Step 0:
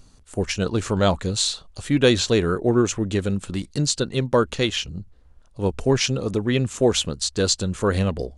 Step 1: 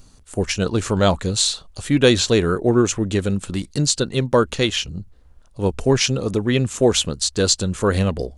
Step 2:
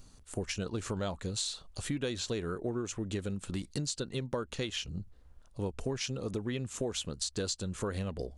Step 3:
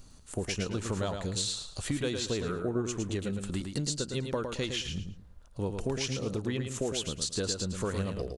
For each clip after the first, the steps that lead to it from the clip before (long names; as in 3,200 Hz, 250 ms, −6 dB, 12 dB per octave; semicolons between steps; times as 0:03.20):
high-shelf EQ 10,000 Hz +6 dB; level +2.5 dB
downward compressor 6 to 1, threshold −25 dBFS, peak gain reduction 15.5 dB; level −7 dB
repeating echo 110 ms, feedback 25%, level −6 dB; level +2 dB